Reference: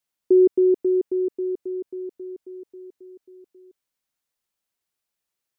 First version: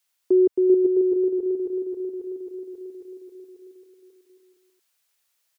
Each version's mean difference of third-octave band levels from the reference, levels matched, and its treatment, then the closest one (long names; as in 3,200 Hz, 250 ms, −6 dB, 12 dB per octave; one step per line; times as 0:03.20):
1.0 dB: parametric band 190 Hz −11 dB 0.96 octaves
bouncing-ball delay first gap 390 ms, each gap 0.7×, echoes 5
one half of a high-frequency compander encoder only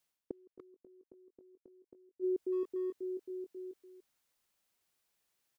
4.0 dB: reversed playback
downward compressor 8 to 1, threshold −30 dBFS, peak gain reduction 17 dB
reversed playback
gate with flip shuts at −30 dBFS, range −35 dB
far-end echo of a speakerphone 290 ms, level −8 dB
level +3 dB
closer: first